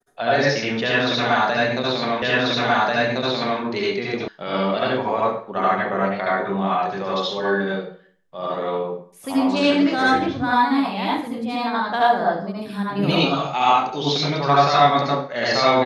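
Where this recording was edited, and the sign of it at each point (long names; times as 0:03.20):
0:02.22: the same again, the last 1.39 s
0:04.28: cut off before it has died away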